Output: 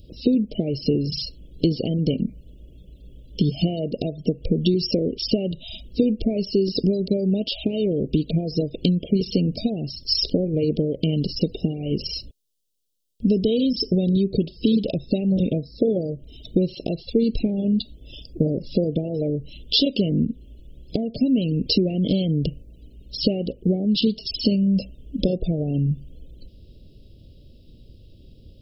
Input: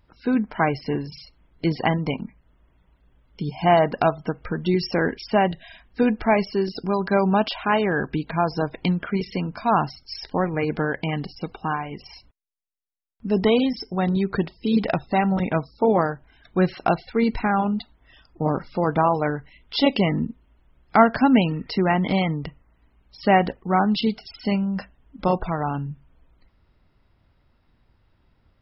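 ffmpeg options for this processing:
ffmpeg -i in.wav -filter_complex "[0:a]asplit=2[link_01][link_02];[link_02]alimiter=limit=-12.5dB:level=0:latency=1:release=343,volume=2dB[link_03];[link_01][link_03]amix=inputs=2:normalize=0,acompressor=threshold=-24dB:ratio=12,asuperstop=centerf=1300:order=12:qfactor=0.55,volume=8dB" out.wav

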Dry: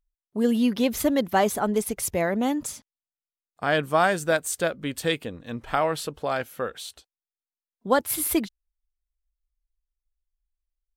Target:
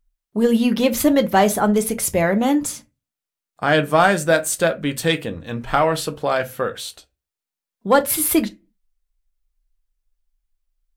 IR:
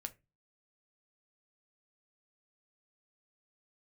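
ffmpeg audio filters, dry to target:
-filter_complex "[0:a]acontrast=84[link_01];[1:a]atrim=start_sample=2205[link_02];[link_01][link_02]afir=irnorm=-1:irlink=0,volume=3dB"

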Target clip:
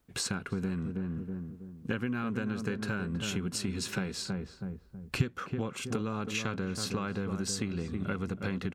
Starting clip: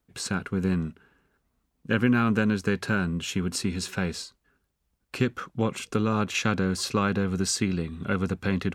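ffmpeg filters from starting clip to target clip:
ffmpeg -i in.wav -filter_complex "[0:a]asplit=2[link_01][link_02];[link_02]adelay=322,lowpass=frequency=910:poles=1,volume=-8dB,asplit=2[link_03][link_04];[link_04]adelay=322,lowpass=frequency=910:poles=1,volume=0.39,asplit=2[link_05][link_06];[link_06]adelay=322,lowpass=frequency=910:poles=1,volume=0.39,asplit=2[link_07][link_08];[link_08]adelay=322,lowpass=frequency=910:poles=1,volume=0.39[link_09];[link_01][link_03][link_05][link_07][link_09]amix=inputs=5:normalize=0,acompressor=threshold=-34dB:ratio=6,asettb=1/sr,asplit=3[link_10][link_11][link_12];[link_10]atrim=end=4.124[link_13];[link_11]atrim=start=4.12:end=5.22,asetpts=PTS-STARTPTS,afade=type=in:duration=0.004:curve=qsin,afade=type=out:start_time=1.096:duration=0.004:curve=qsin,asubboost=boost=8.5:cutoff=180[link_14];[link_12]atrim=start=5.216[link_15];[link_13][link_14]acrossfade=duration=0.004:curve1=hsin:curve2=qsin[link_16];[link_16][link_15]acrossfade=duration=0.004:curve1=qsin:curve2=hsin,volume=3.5dB" out.wav

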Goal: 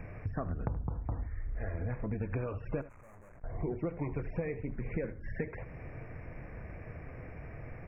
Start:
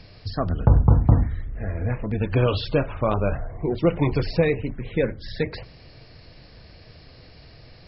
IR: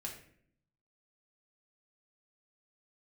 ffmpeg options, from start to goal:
-filter_complex "[0:a]asettb=1/sr,asplit=3[link_01][link_02][link_03];[link_01]atrim=end=0.894[link_04];[link_02]atrim=start=0.89:end=1.74,asetpts=PTS-STARTPTS,afade=type=in:duration=0.004:curve=qsin,afade=type=out:start_time=0.846:duration=0.004:curve=qsin,equalizer=frequency=170:width_type=o:width=1.3:gain=-11.5[link_05];[link_03]atrim=start=1.736[link_06];[link_04][link_05]acrossfade=duration=0.004:curve1=hsin:curve2=qsin[link_07];[link_07][link_06]acrossfade=duration=0.004:curve1=qsin:curve2=hsin,acompressor=threshold=-35dB:ratio=10,asettb=1/sr,asplit=3[link_08][link_09][link_10];[link_08]atrim=end=2.814[link_11];[link_09]atrim=start=2.81:end=3.44,asetpts=PTS-STARTPTS,afade=type=in:duration=0.004:curve=qsin,afade=type=out:start_time=0.626:duration=0.004:curve=qsin,aeval=exprs='(tanh(708*val(0)+0.7)-tanh(0.7))/708':channel_layout=same[link_12];[link_10]atrim=start=3.436[link_13];[link_11][link_12]acrossfade=duration=0.004:curve1=hsin:curve2=qsin[link_14];[link_14][link_13]acrossfade=duration=0.004:curve1=qsin:curve2=hsin,asuperstop=centerf=4000:order=12:qfactor=1,aecho=1:1:77:0.168,volume=2.5dB"

